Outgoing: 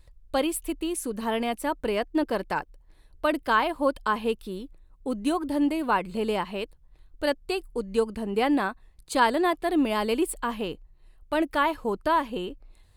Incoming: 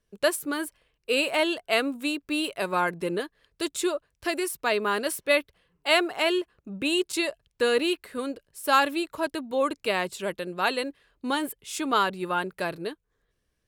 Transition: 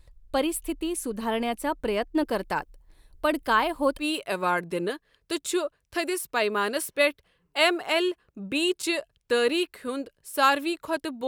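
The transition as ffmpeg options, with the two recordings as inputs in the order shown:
ffmpeg -i cue0.wav -i cue1.wav -filter_complex "[0:a]asettb=1/sr,asplit=3[link_01][link_02][link_03];[link_01]atrim=end=2.184[link_04];[link_02]atrim=start=2.18:end=4.05,asetpts=PTS-STARTPTS,afade=type=in:duration=0.004:curve=qsin,afade=type=out:start_time=1.866:duration=0.004:curve=qsin,highshelf=frequency=5600:gain=5.5[link_05];[link_03]atrim=start=4.046[link_06];[link_04][link_05]acrossfade=duration=0.004:curve1=hsin:curve2=qsin[link_07];[link_07][link_06]acrossfade=duration=0.004:curve1=qsin:curve2=hsin,apad=whole_dur=11.27,atrim=end=11.27,atrim=end=4.05,asetpts=PTS-STARTPTS[link_08];[1:a]atrim=start=2.27:end=9.57,asetpts=PTS-STARTPTS[link_09];[link_08][link_09]acrossfade=duration=0.08:curve1=tri:curve2=tri" out.wav

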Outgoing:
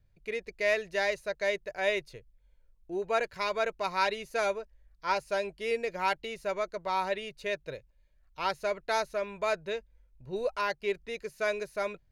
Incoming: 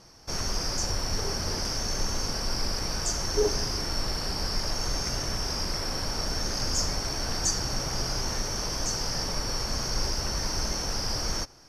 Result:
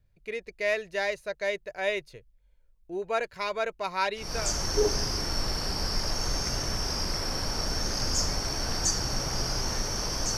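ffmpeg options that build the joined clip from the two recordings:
ffmpeg -i cue0.wav -i cue1.wav -filter_complex "[0:a]apad=whole_dur=10.37,atrim=end=10.37,atrim=end=4.54,asetpts=PTS-STARTPTS[link_01];[1:a]atrim=start=2.74:end=8.97,asetpts=PTS-STARTPTS[link_02];[link_01][link_02]acrossfade=duration=0.4:curve1=qsin:curve2=qsin" out.wav

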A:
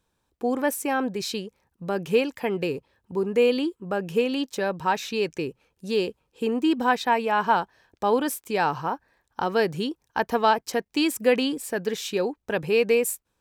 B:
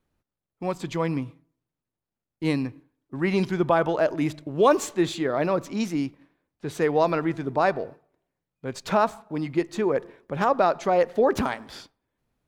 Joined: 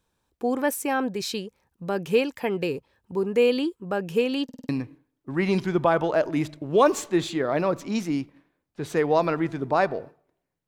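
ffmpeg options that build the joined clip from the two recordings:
ffmpeg -i cue0.wav -i cue1.wav -filter_complex "[0:a]apad=whole_dur=10.67,atrim=end=10.67,asplit=5[link_01][link_02][link_03][link_04][link_05];[link_01]atrim=end=4.492[link_06];[link_02]atrim=start=4.438:end=4.492[link_07];[link_03]atrim=start=4.438:end=4.492[link_08];[link_04]atrim=start=4.438:end=4.492[link_09];[link_05]atrim=start=4.438:end=4.492[link_10];[1:a]atrim=start=2.538:end=8.52[link_11];[link_06][link_07]acrossfade=duration=0.004:curve1=hsin:curve2=hsin[link_12];[link_12][link_08]acrossfade=duration=0.004:curve1=hsin:curve2=hsin[link_13];[link_13][link_09]acrossfade=duration=0.004:curve1=hsin:curve2=hsin[link_14];[link_14][link_10]acrossfade=duration=0.004:curve1=hsin:curve2=hsin[link_15];[link_15][link_11]acrossfade=duration=0.004:curve1=hsin:curve2=hsin" out.wav

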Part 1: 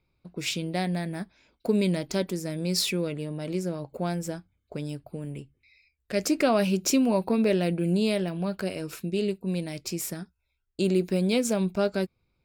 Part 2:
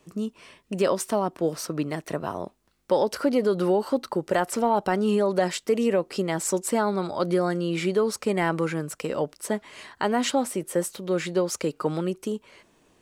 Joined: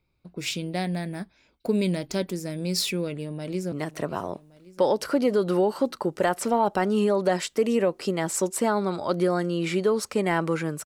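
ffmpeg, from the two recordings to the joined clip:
ffmpeg -i cue0.wav -i cue1.wav -filter_complex "[0:a]apad=whole_dur=10.85,atrim=end=10.85,atrim=end=3.722[link_01];[1:a]atrim=start=1.828:end=8.96[link_02];[link_01][link_02]acrossfade=duration=0.004:curve1=hsin:curve2=hsin,asplit=2[link_03][link_04];[link_04]afade=type=in:start_time=3.22:duration=0.01,afade=type=out:start_time=3.72:duration=0.01,aecho=0:1:560|1120|1680|2240|2800|3360:0.158489|0.0950936|0.0570562|0.0342337|0.0205402|0.0123241[link_05];[link_03][link_05]amix=inputs=2:normalize=0" out.wav

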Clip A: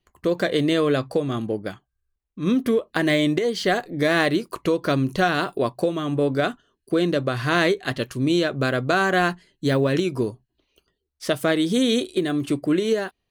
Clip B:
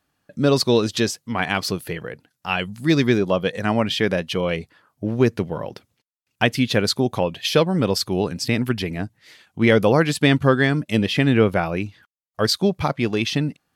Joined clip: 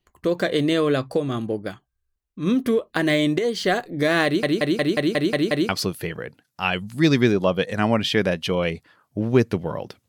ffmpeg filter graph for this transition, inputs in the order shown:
ffmpeg -i cue0.wav -i cue1.wav -filter_complex "[0:a]apad=whole_dur=10.08,atrim=end=10.08,asplit=8[link_01][link_02][link_03][link_04][link_05][link_06][link_07][link_08];[link_01]atrim=end=4.432[link_09];[link_02]atrim=start=4.248:end=4.432[link_10];[link_03]atrim=start=4.248:end=4.432[link_11];[link_04]atrim=start=4.248:end=4.432[link_12];[link_05]atrim=start=4.248:end=4.432[link_13];[link_06]atrim=start=4.248:end=4.432[link_14];[link_07]atrim=start=4.248:end=4.432[link_15];[link_08]atrim=start=4.248:end=4.432[link_16];[1:a]atrim=start=1.548:end=5.94[link_17];[link_09][link_10]acrossfade=duration=0.004:curve1=hsin:curve2=hsin[link_18];[link_18][link_11]acrossfade=duration=0.004:curve1=hsin:curve2=hsin[link_19];[link_19][link_12]acrossfade=duration=0.004:curve1=hsin:curve2=hsin[link_20];[link_20][link_13]acrossfade=duration=0.004:curve1=hsin:curve2=hsin[link_21];[link_21][link_14]acrossfade=duration=0.004:curve1=hsin:curve2=hsin[link_22];[link_22][link_15]acrossfade=duration=0.004:curve1=hsin:curve2=hsin[link_23];[link_23][link_16]acrossfade=duration=0.004:curve1=hsin:curve2=hsin[link_24];[link_24][link_17]acrossfade=duration=0.004:curve1=hsin:curve2=hsin" out.wav

